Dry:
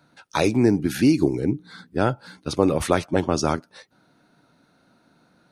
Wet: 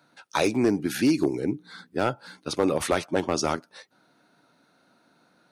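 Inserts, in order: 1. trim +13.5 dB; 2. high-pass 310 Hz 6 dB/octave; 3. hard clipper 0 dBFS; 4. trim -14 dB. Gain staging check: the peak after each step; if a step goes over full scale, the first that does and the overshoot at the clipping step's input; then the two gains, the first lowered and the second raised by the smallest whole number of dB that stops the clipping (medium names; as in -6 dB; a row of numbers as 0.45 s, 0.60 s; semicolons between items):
+10.5 dBFS, +8.5 dBFS, 0.0 dBFS, -14.0 dBFS; step 1, 8.5 dB; step 1 +4.5 dB, step 4 -5 dB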